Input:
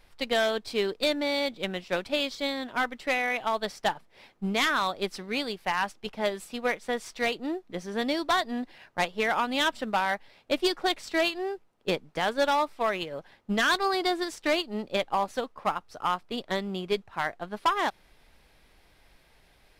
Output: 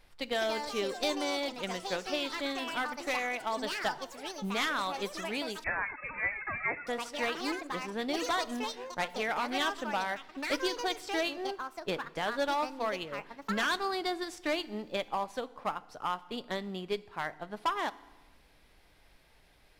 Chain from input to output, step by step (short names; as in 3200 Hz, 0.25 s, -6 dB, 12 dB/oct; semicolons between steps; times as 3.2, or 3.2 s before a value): in parallel at -2.5 dB: compressor, threshold -38 dBFS, peak gain reduction 16.5 dB; on the sum: FDN reverb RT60 1.2 s, low-frequency decay 1.3×, high-frequency decay 0.85×, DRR 16.5 dB; echoes that change speed 0.258 s, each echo +5 st, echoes 3, each echo -6 dB; 5.64–6.87 inverted band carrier 2600 Hz; gain -7.5 dB